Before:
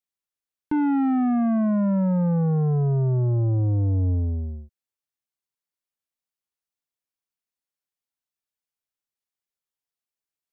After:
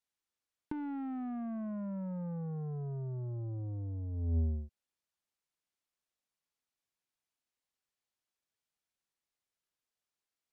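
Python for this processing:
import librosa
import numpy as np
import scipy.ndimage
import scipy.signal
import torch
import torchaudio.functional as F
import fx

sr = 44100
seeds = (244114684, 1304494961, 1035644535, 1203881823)

y = fx.tracing_dist(x, sr, depth_ms=0.026)
y = fx.over_compress(y, sr, threshold_db=-26.0, ratio=-0.5)
y = np.interp(np.arange(len(y)), np.arange(len(y))[::2], y[::2])
y = y * 10.0 ** (-8.5 / 20.0)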